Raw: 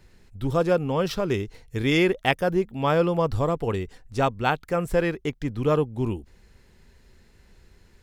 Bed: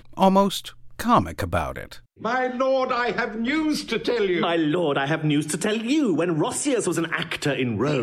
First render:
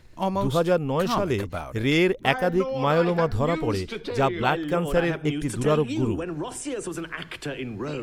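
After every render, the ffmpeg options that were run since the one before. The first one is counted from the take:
ffmpeg -i in.wav -i bed.wav -filter_complex "[1:a]volume=-8.5dB[link_01];[0:a][link_01]amix=inputs=2:normalize=0" out.wav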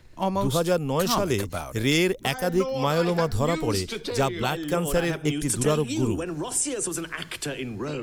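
ffmpeg -i in.wav -filter_complex "[0:a]acrossover=split=180|4900[link_01][link_02][link_03];[link_02]alimiter=limit=-13dB:level=0:latency=1:release=258[link_04];[link_03]dynaudnorm=framelen=140:gausssize=7:maxgain=12dB[link_05];[link_01][link_04][link_05]amix=inputs=3:normalize=0" out.wav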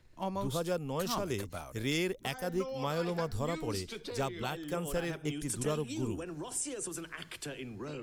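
ffmpeg -i in.wav -af "volume=-10.5dB" out.wav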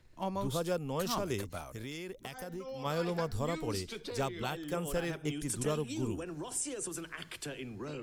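ffmpeg -i in.wav -filter_complex "[0:a]asplit=3[link_01][link_02][link_03];[link_01]afade=type=out:start_time=1.65:duration=0.02[link_04];[link_02]acompressor=threshold=-38dB:ratio=6:attack=3.2:release=140:knee=1:detection=peak,afade=type=in:start_time=1.65:duration=0.02,afade=type=out:start_time=2.84:duration=0.02[link_05];[link_03]afade=type=in:start_time=2.84:duration=0.02[link_06];[link_04][link_05][link_06]amix=inputs=3:normalize=0" out.wav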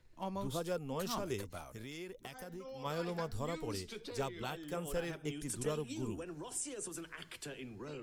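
ffmpeg -i in.wav -af "flanger=delay=2:depth=2.9:regen=76:speed=1.4:shape=sinusoidal" out.wav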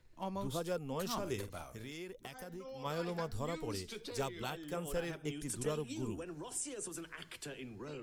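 ffmpeg -i in.wav -filter_complex "[0:a]asettb=1/sr,asplit=3[link_01][link_02][link_03];[link_01]atrim=end=1.194[link_04];[link_02]atrim=start=1.19:end=1.92,asetpts=PTS-STARTPTS,afade=type=in:duration=0.004:curve=qsin,afade=type=out:start_time=0.726:duration=0.004:curve=qsin,asplit=2[link_05][link_06];[link_06]adelay=48,volume=-10.5dB[link_07];[link_05][link_07]amix=inputs=2:normalize=0,atrim=end_sample=32193[link_08];[link_03]atrim=start=1.916[link_09];[link_04][link_08]acrossfade=duration=0.004:curve1=hsin:curve2=qsin[link_10];[link_10][link_09]acrossfade=duration=0.004:curve1=qsin:curve2=hsin,asettb=1/sr,asplit=3[link_11][link_12][link_13];[link_11]atrim=end=3.844[link_14];[link_12]atrim=start=3.84:end=4.5,asetpts=PTS-STARTPTS,afade=type=in:duration=0.004:curve=qsin,afade=type=out:start_time=0.656:duration=0.004:curve=qsin,highshelf=frequency=5000:gain=5[link_15];[link_13]atrim=start=4.496[link_16];[link_14][link_15]acrossfade=duration=0.004:curve1=hsin:curve2=qsin[link_17];[link_17][link_16]acrossfade=duration=0.004:curve1=qsin:curve2=hsin" out.wav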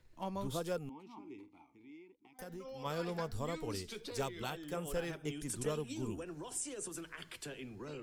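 ffmpeg -i in.wav -filter_complex "[0:a]asettb=1/sr,asplit=3[link_01][link_02][link_03];[link_01]atrim=end=0.894[link_04];[link_02]atrim=start=0.89:end=2.39,asetpts=PTS-STARTPTS,afade=type=in:duration=0.004:curve=qsin,afade=type=out:start_time=1.496:duration=0.004:curve=qsin,asplit=3[link_05][link_06][link_07];[link_05]bandpass=frequency=300:width_type=q:width=8,volume=0dB[link_08];[link_06]bandpass=frequency=870:width_type=q:width=8,volume=-6dB[link_09];[link_07]bandpass=frequency=2240:width_type=q:width=8,volume=-9dB[link_10];[link_08][link_09][link_10]amix=inputs=3:normalize=0[link_11];[link_03]atrim=start=2.386[link_12];[link_04][link_11]acrossfade=duration=0.004:curve1=hsin:curve2=qsin[link_13];[link_13][link_12]acrossfade=duration=0.004:curve1=qsin:curve2=hsin" out.wav

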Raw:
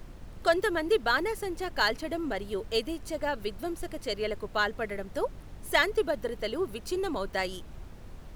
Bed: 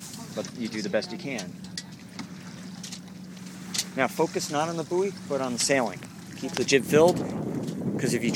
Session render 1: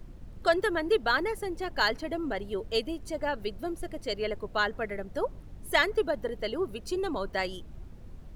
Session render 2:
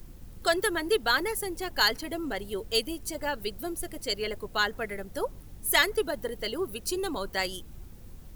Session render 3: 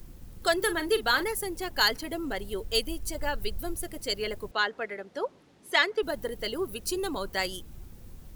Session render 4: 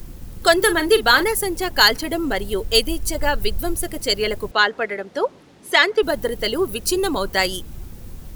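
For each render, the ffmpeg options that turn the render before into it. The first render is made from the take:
ffmpeg -i in.wav -af "afftdn=noise_reduction=8:noise_floor=-47" out.wav
ffmpeg -i in.wav -af "aemphasis=mode=production:type=75fm,bandreject=frequency=630:width=12" out.wav
ffmpeg -i in.wav -filter_complex "[0:a]asettb=1/sr,asplit=3[link_01][link_02][link_03];[link_01]atrim=end=0.564[link_04];[link_02]atrim=start=0.56:end=1.24,asetpts=PTS-STARTPTS,afade=type=in:duration=0.004:curve=qsin,afade=type=out:start_time=0.676:duration=0.004:curve=qsin,asplit=2[link_05][link_06];[link_06]adelay=42,volume=-12dB[link_07];[link_05][link_07]amix=inputs=2:normalize=0,atrim=end_sample=29988[link_08];[link_03]atrim=start=1.236[link_09];[link_04][link_08]acrossfade=duration=0.004:curve1=hsin:curve2=qsin[link_10];[link_10][link_09]acrossfade=duration=0.004:curve1=qsin:curve2=hsin,asettb=1/sr,asplit=3[link_11][link_12][link_13];[link_11]atrim=end=2.164[link_14];[link_12]atrim=start=2.16:end=3.76,asetpts=PTS-STARTPTS,afade=type=in:duration=0.004:curve=qsin,afade=type=out:start_time=1.596:duration=0.004:curve=qsin,asubboost=boost=7.5:cutoff=97[link_15];[link_13]atrim=start=3.756[link_16];[link_14][link_15]acrossfade=duration=0.004:curve1=hsin:curve2=qsin[link_17];[link_17][link_16]acrossfade=duration=0.004:curve1=qsin:curve2=hsin,asettb=1/sr,asplit=3[link_18][link_19][link_20];[link_18]atrim=end=4.514[link_21];[link_19]atrim=start=4.51:end=6.03,asetpts=PTS-STARTPTS,afade=type=in:duration=0.004:curve=qsin,afade=type=out:start_time=1.516:duration=0.004:curve=qsin,highpass=280,lowpass=4400[link_22];[link_20]atrim=start=6.026[link_23];[link_21][link_22]acrossfade=duration=0.004:curve1=hsin:curve2=qsin[link_24];[link_24][link_23]acrossfade=duration=0.004:curve1=qsin:curve2=hsin" out.wav
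ffmpeg -i in.wav -af "volume=10.5dB,alimiter=limit=-1dB:level=0:latency=1" out.wav

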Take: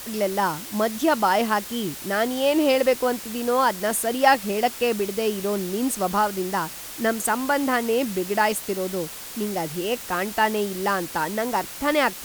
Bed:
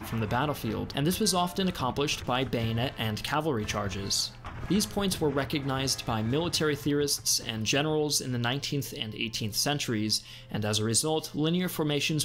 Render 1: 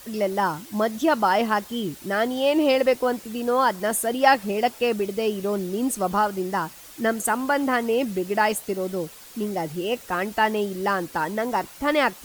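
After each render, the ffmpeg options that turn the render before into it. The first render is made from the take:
ffmpeg -i in.wav -af "afftdn=noise_reduction=9:noise_floor=-37" out.wav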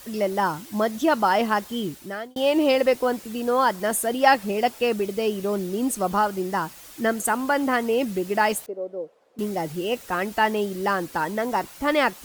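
ffmpeg -i in.wav -filter_complex "[0:a]asettb=1/sr,asplit=3[link_01][link_02][link_03];[link_01]atrim=end=8.664[link_04];[link_02]atrim=start=8.66:end=9.39,asetpts=PTS-STARTPTS,afade=type=in:duration=0.004:curve=qsin,afade=type=out:start_time=0.726:duration=0.004:curve=qsin,bandpass=frequency=530:width_type=q:width=2.9[link_05];[link_03]atrim=start=9.386[link_06];[link_04][link_05]acrossfade=duration=0.004:curve1=hsin:curve2=qsin[link_07];[link_07][link_06]acrossfade=duration=0.004:curve1=qsin:curve2=hsin,asplit=2[link_08][link_09];[link_08]atrim=end=2.36,asetpts=PTS-STARTPTS,afade=type=out:start_time=1.84:duration=0.52[link_10];[link_09]atrim=start=2.36,asetpts=PTS-STARTPTS,afade=type=in:duration=0.004:curve=hsin[link_11];[link_10][link_11]concat=n=2:v=0:a=1" out.wav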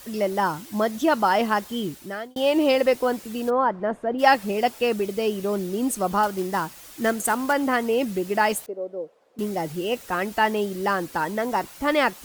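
ffmpeg -i in.wav -filter_complex "[0:a]asplit=3[link_01][link_02][link_03];[link_01]afade=type=out:start_time=3.49:duration=0.02[link_04];[link_02]lowpass=1300,afade=type=in:start_time=3.49:duration=0.02,afade=type=out:start_time=4.18:duration=0.02[link_05];[link_03]afade=type=in:start_time=4.18:duration=0.02[link_06];[link_04][link_05][link_06]amix=inputs=3:normalize=0,asettb=1/sr,asplit=3[link_07][link_08][link_09];[link_07]atrim=end=6.234[link_10];[link_08]atrim=start=6.23:end=7.53,asetpts=PTS-STARTPTS,afade=type=in:duration=0.004:curve=qsin,afade=type=out:start_time=1.296:duration=0.004:curve=qsin,acrusher=bits=4:mode=log:mix=0:aa=0.000001[link_11];[link_09]atrim=start=7.526[link_12];[link_10][link_11]acrossfade=duration=0.004:curve1=hsin:curve2=qsin[link_13];[link_13][link_12]acrossfade=duration=0.004:curve1=qsin:curve2=hsin" out.wav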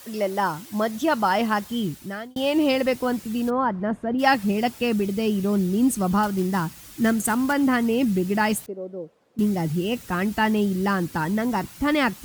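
ffmpeg -i in.wav -af "highpass=frequency=130:poles=1,asubboost=boost=7.5:cutoff=190" out.wav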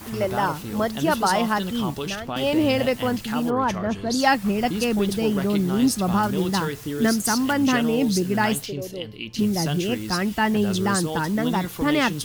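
ffmpeg -i in.wav -i bed.wav -filter_complex "[1:a]volume=-2dB[link_01];[0:a][link_01]amix=inputs=2:normalize=0" out.wav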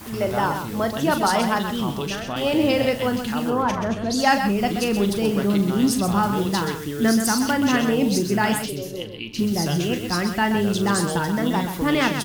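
ffmpeg -i in.wav -filter_complex "[0:a]asplit=2[link_01][link_02];[link_02]adelay=40,volume=-10.5dB[link_03];[link_01][link_03]amix=inputs=2:normalize=0,asplit=2[link_04][link_05];[link_05]aecho=0:1:129:0.398[link_06];[link_04][link_06]amix=inputs=2:normalize=0" out.wav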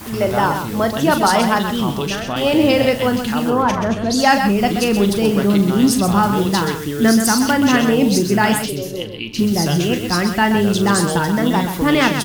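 ffmpeg -i in.wav -af "volume=5.5dB,alimiter=limit=-2dB:level=0:latency=1" out.wav

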